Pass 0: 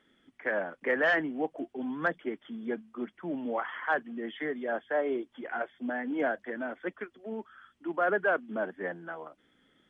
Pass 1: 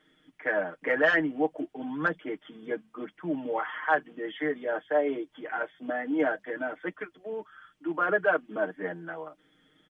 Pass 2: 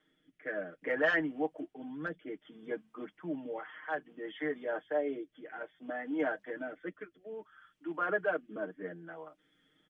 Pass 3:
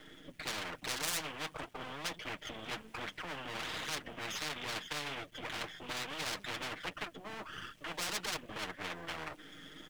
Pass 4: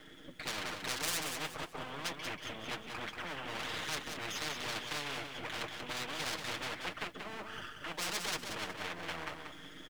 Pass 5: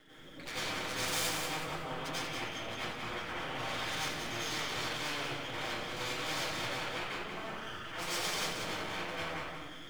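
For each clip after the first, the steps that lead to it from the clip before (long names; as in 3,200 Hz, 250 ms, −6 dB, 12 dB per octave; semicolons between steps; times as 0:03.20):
comb filter 6.5 ms, depth 90%
rotating-speaker cabinet horn 0.6 Hz; level −5 dB
gain on one half-wave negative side −12 dB; flanger 1.3 Hz, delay 0 ms, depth 7.1 ms, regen −50%; every bin compressed towards the loudest bin 10 to 1; level +1.5 dB
repeating echo 185 ms, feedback 31%, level −6 dB
convolution reverb RT60 0.95 s, pre-delay 83 ms, DRR −9.5 dB; level −7 dB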